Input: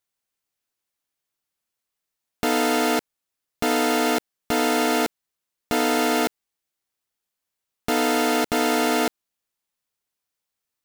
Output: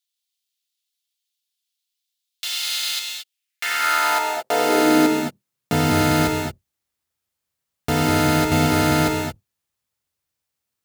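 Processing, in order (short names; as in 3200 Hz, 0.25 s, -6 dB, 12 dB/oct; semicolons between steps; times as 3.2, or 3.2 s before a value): octaver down 1 oct, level +1 dB; non-linear reverb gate 0.25 s rising, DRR 3 dB; high-pass sweep 3500 Hz -> 67 Hz, 3.21–6.07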